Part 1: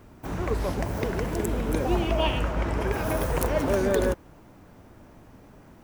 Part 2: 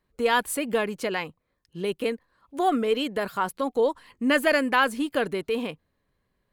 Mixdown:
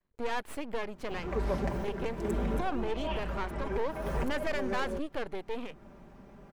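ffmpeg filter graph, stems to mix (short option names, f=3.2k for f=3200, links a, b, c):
-filter_complex "[0:a]aecho=1:1:5.1:0.65,adelay=850,volume=-3dB[a];[1:a]aeval=exprs='max(val(0),0)':c=same,volume=-4dB,asplit=2[b][c];[c]apad=whole_len=294861[d];[a][d]sidechaincompress=threshold=-41dB:ratio=5:attack=47:release=265[e];[e][b]amix=inputs=2:normalize=0,lowpass=f=2.8k:p=1,asoftclip=type=tanh:threshold=-21.5dB"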